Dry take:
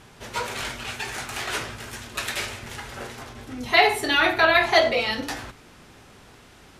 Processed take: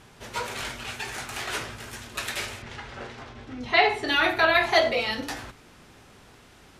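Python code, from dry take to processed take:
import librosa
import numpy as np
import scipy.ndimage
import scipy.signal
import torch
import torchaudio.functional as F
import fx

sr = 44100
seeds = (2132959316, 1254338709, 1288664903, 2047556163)

y = fx.lowpass(x, sr, hz=4600.0, slope=12, at=(2.62, 4.08))
y = y * 10.0 ** (-2.5 / 20.0)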